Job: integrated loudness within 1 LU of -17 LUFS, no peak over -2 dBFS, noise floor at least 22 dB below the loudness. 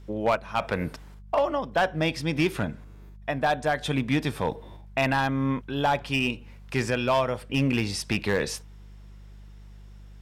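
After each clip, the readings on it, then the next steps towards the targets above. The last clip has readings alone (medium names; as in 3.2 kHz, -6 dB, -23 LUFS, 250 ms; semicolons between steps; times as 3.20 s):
clipped samples 0.6%; clipping level -16.0 dBFS; hum 50 Hz; highest harmonic 200 Hz; hum level -44 dBFS; loudness -27.0 LUFS; peak level -16.0 dBFS; loudness target -17.0 LUFS
-> clip repair -16 dBFS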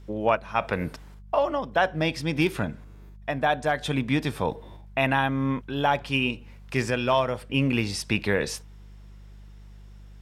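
clipped samples 0.0%; hum 50 Hz; highest harmonic 200 Hz; hum level -44 dBFS
-> de-hum 50 Hz, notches 4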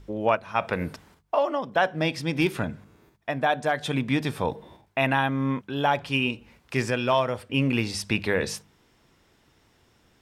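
hum not found; loudness -26.5 LUFS; peak level -8.0 dBFS; loudness target -17.0 LUFS
-> trim +9.5 dB; peak limiter -2 dBFS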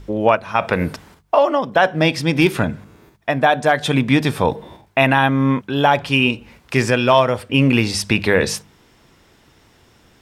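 loudness -17.5 LUFS; peak level -2.0 dBFS; noise floor -54 dBFS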